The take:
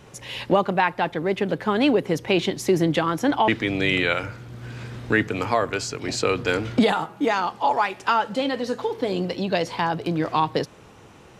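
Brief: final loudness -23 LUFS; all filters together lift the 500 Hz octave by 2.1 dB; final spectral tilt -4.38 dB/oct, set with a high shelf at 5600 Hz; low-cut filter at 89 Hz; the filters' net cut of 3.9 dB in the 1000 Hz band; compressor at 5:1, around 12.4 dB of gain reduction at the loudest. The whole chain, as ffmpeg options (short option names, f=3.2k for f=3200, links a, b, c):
-af "highpass=89,equalizer=f=500:t=o:g=4,equalizer=f=1k:t=o:g=-6.5,highshelf=f=5.6k:g=5.5,acompressor=threshold=-27dB:ratio=5,volume=8.5dB"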